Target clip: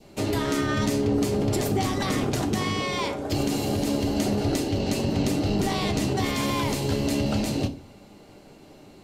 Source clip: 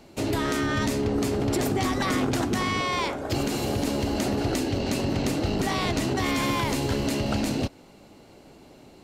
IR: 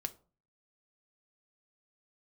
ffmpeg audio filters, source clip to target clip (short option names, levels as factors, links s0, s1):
-filter_complex "[0:a]adynamicequalizer=threshold=0.00708:dfrequency=1500:dqfactor=1.1:tfrequency=1500:tqfactor=1.1:attack=5:release=100:ratio=0.375:range=2.5:mode=cutabove:tftype=bell[s0];[1:a]atrim=start_sample=2205,asetrate=31752,aresample=44100[s1];[s0][s1]afir=irnorm=-1:irlink=0"